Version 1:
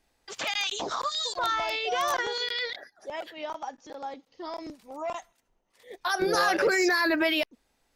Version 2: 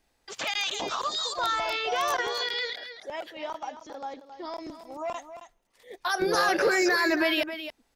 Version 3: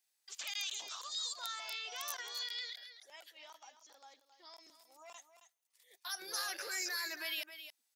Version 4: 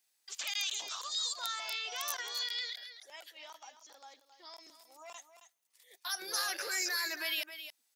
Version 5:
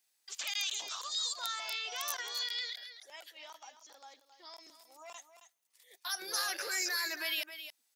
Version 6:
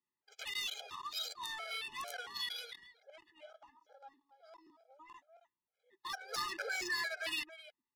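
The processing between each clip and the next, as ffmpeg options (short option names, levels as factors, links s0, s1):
-af "aecho=1:1:269:0.282"
-af "aderivative,volume=0.668"
-af "highpass=120,volume=1.68"
-af anull
-af "adynamicsmooth=sensitivity=7.5:basefreq=1100,afftfilt=real='re*gt(sin(2*PI*2.2*pts/sr)*(1-2*mod(floor(b*sr/1024/420),2)),0)':imag='im*gt(sin(2*PI*2.2*pts/sr)*(1-2*mod(floor(b*sr/1024/420),2)),0)':win_size=1024:overlap=0.75,volume=1.33"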